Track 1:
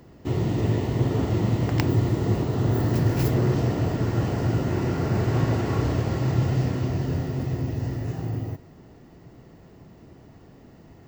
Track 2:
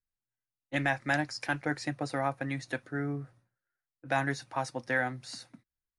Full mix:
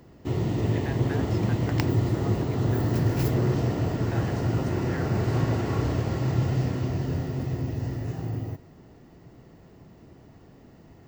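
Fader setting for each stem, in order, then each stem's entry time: -2.0 dB, -11.5 dB; 0.00 s, 0.00 s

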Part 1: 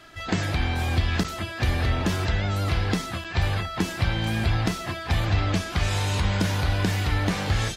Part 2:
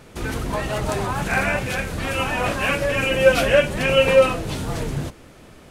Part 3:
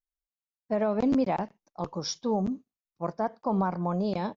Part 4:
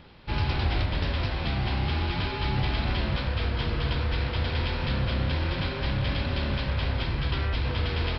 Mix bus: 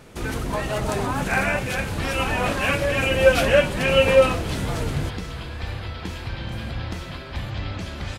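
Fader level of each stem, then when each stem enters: -9.0 dB, -1.0 dB, -9.5 dB, -6.5 dB; 2.25 s, 0.00 s, 0.00 s, 1.50 s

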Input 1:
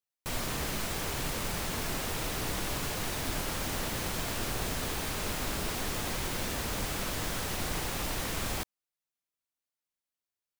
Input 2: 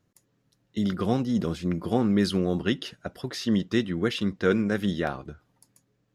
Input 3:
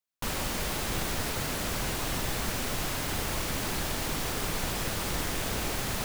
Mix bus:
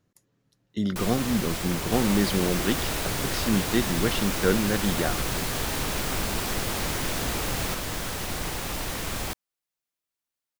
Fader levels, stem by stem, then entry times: +2.5 dB, -0.5 dB, 0.0 dB; 0.70 s, 0.00 s, 1.70 s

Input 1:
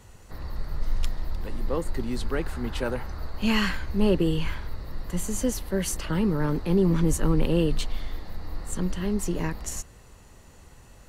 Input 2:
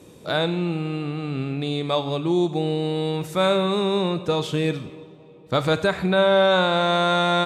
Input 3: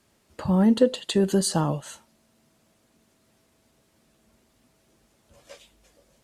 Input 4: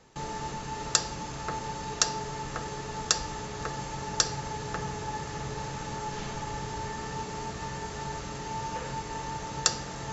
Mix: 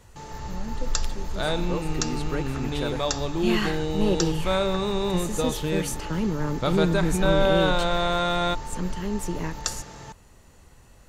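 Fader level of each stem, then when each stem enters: -2.0 dB, -4.5 dB, -19.0 dB, -4.5 dB; 0.00 s, 1.10 s, 0.00 s, 0.00 s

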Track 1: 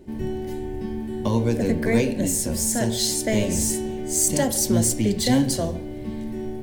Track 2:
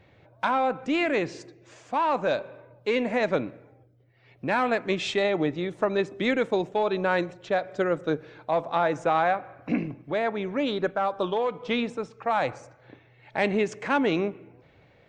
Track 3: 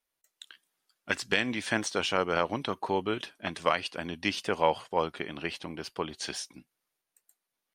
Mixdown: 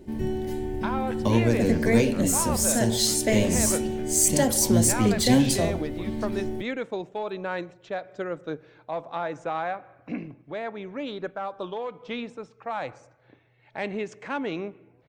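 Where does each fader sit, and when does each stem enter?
0.0 dB, -6.5 dB, -15.5 dB; 0.00 s, 0.40 s, 0.00 s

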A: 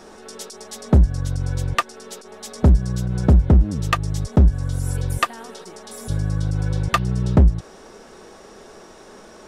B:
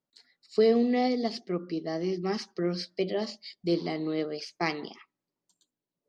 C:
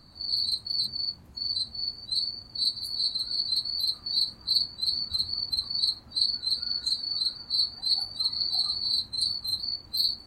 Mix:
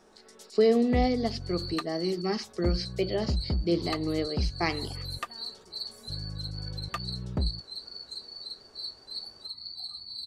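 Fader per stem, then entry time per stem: -16.0 dB, +0.5 dB, -12.5 dB; 0.00 s, 0.00 s, 1.25 s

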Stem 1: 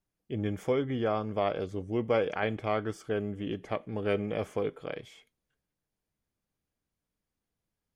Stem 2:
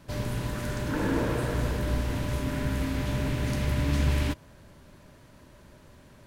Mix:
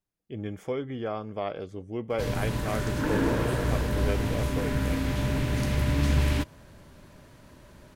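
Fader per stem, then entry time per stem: -3.0 dB, +1.5 dB; 0.00 s, 2.10 s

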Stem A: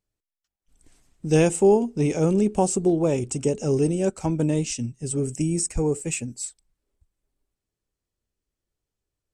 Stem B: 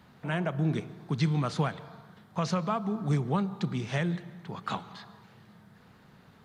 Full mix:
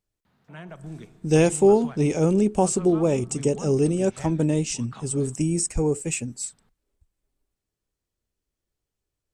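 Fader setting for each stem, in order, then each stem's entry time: +0.5 dB, -10.5 dB; 0.00 s, 0.25 s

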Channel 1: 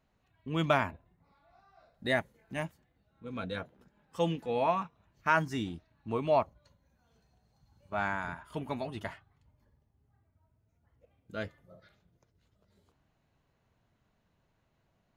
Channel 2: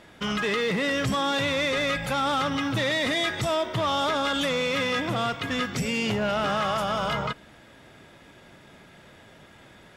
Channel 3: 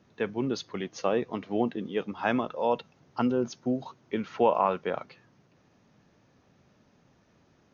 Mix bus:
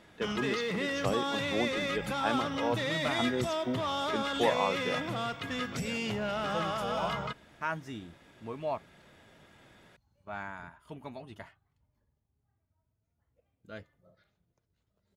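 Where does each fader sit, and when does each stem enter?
-7.5 dB, -7.5 dB, -5.5 dB; 2.35 s, 0.00 s, 0.00 s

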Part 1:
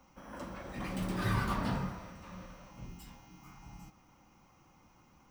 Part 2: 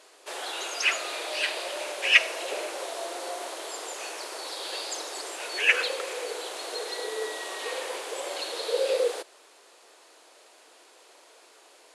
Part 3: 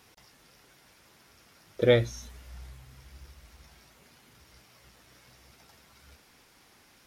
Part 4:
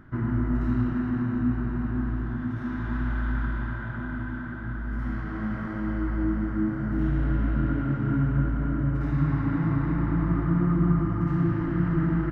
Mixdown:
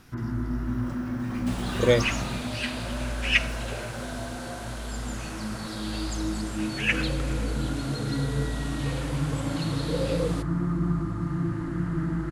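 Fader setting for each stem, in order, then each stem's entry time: -0.5 dB, -4.0 dB, +0.5 dB, -4.0 dB; 0.50 s, 1.20 s, 0.00 s, 0.00 s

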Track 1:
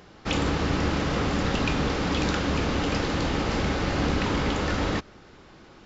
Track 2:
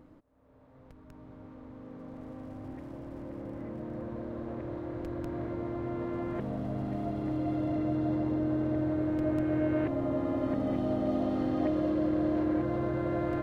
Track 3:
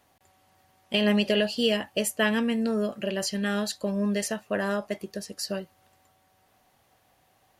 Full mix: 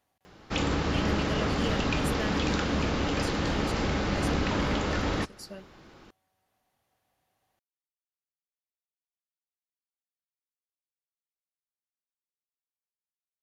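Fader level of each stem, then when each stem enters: -2.5 dB, mute, -12.0 dB; 0.25 s, mute, 0.00 s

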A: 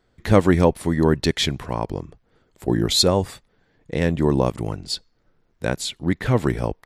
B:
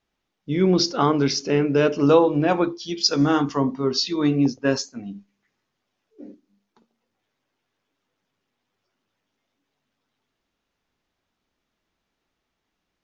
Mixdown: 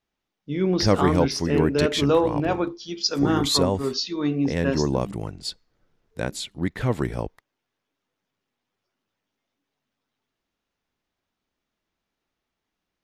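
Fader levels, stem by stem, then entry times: -4.5 dB, -4.0 dB; 0.55 s, 0.00 s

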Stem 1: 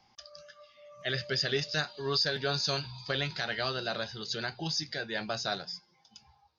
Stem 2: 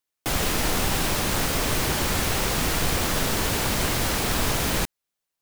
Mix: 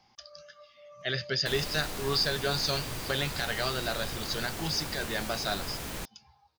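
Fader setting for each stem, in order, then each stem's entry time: +1.0 dB, -13.5 dB; 0.00 s, 1.20 s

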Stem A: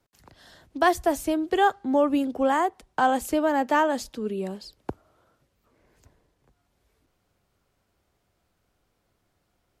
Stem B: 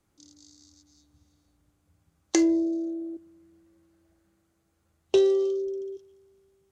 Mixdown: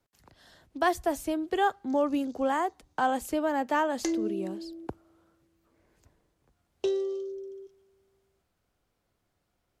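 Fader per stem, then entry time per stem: -5.0 dB, -8.0 dB; 0.00 s, 1.70 s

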